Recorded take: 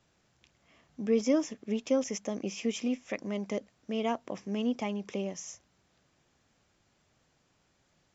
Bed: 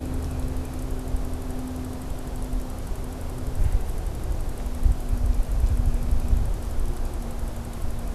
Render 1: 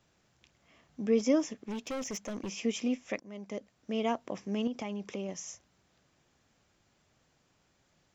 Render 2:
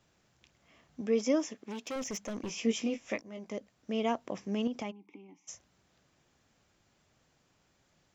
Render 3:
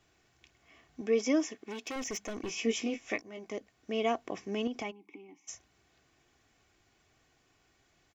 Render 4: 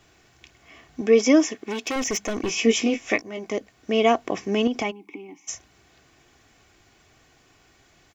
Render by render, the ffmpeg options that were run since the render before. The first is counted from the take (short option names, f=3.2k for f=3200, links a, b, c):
-filter_complex "[0:a]asettb=1/sr,asplit=3[a][b][c];[a]atrim=end=1.584[d];[b]atrim=start=1.58:end=2.5,asetpts=PTS-STARTPTS,afade=t=in:d=0.004:c=qsin,afade=t=out:st=0.916:d=0.004:c=qsin,asoftclip=type=hard:threshold=-33.5dB[e];[c]atrim=start=2.496[f];[d][e]acrossfade=d=0.004:c1=hsin:c2=qsin[g];[g][f]acrossfade=d=0.004:c1=qsin:c2=hsin,asettb=1/sr,asplit=3[h][i][j];[h]atrim=end=4.674[k];[i]atrim=start=4.67:end=5.29,asetpts=PTS-STARTPTS,afade=t=in:d=0.004:c=qsin,afade=t=out:st=0.616:d=0.004:c=qsin,acompressor=threshold=-32dB:ratio=5:attack=3.2:release=140:knee=1:detection=peak[l];[j]atrim=start=5.286[m];[k][l]acrossfade=d=0.004:c1=hsin:c2=qsin[n];[n][m]acrossfade=d=0.004:c1=qsin:c2=hsin,asplit=2[o][p];[o]atrim=end=3.2,asetpts=PTS-STARTPTS,afade=t=out:st=3.196:d=0.004:c=hsin:silence=0.141254[q];[p]atrim=start=3.2,asetpts=PTS-STARTPTS,afade=t=in:d=0.75:silence=0.141254[r];[q][r]concat=n=2:v=0:a=1"
-filter_complex "[0:a]asettb=1/sr,asplit=3[a][b][c];[a]atrim=end=1.014[d];[b]atrim=start=1.01:end=1.96,asetpts=PTS-STARTPTS,afade=t=in:d=0.004:c=qsin,afade=t=out:st=0.946:d=0.004:c=qsin,highpass=f=260:p=1[e];[c]atrim=start=1.956[f];[d][e]acrossfade=d=0.004:c1=hsin:c2=qsin[g];[g][f]acrossfade=d=0.004:c1=qsin:c2=hsin,asettb=1/sr,asplit=3[h][i][j];[h]atrim=end=2.464[k];[i]atrim=start=2.46:end=3.52,asetpts=PTS-STARTPTS,afade=t=in:d=0.004:c=qsin,afade=t=out:st=1.056:d=0.004:c=qsin,asplit=2[l][m];[m]adelay=18,volume=-5.5dB[n];[l][n]amix=inputs=2:normalize=0,atrim=end_sample=46746[o];[j]atrim=start=3.516[p];[k][o]acrossfade=d=0.004:c1=hsin:c2=qsin[q];[q][p]acrossfade=d=0.004:c1=qsin:c2=hsin,asplit=3[r][s][t];[r]afade=t=out:st=4.9:d=0.02[u];[s]asplit=3[v][w][x];[v]bandpass=f=300:t=q:w=8,volume=0dB[y];[w]bandpass=f=870:t=q:w=8,volume=-6dB[z];[x]bandpass=f=2.24k:t=q:w=8,volume=-9dB[aa];[y][z][aa]amix=inputs=3:normalize=0,afade=t=in:st=4.9:d=0.02,afade=t=out:st=5.47:d=0.02[ab];[t]afade=t=in:st=5.47:d=0.02[ac];[u][ab][ac]amix=inputs=3:normalize=0"
-af "equalizer=f=2.2k:w=1.9:g=4,aecho=1:1:2.7:0.47"
-af "volume=11.5dB"